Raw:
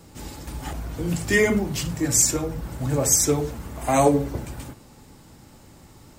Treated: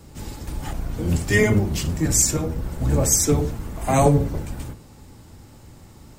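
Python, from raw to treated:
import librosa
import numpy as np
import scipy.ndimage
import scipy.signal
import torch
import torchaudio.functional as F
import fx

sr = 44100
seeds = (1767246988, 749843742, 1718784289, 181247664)

y = fx.octave_divider(x, sr, octaves=1, level_db=3.0)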